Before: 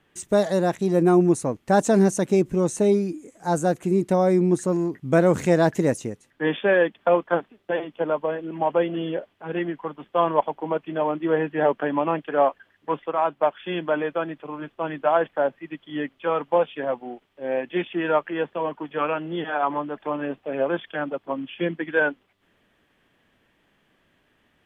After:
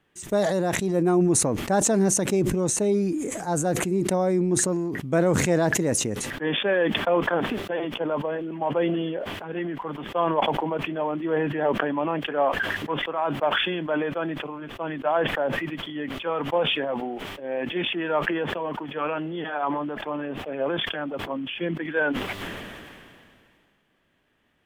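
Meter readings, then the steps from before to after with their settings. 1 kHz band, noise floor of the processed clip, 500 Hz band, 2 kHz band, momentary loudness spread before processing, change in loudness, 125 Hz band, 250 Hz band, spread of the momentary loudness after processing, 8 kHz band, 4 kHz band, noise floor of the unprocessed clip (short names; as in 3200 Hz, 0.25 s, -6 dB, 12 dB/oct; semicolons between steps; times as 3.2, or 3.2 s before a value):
-2.5 dB, -62 dBFS, -3.0 dB, +1.0 dB, 11 LU, -1.5 dB, -1.0 dB, -1.5 dB, 10 LU, n/a, +9.5 dB, -66 dBFS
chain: sustainer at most 26 dB/s; gain -4 dB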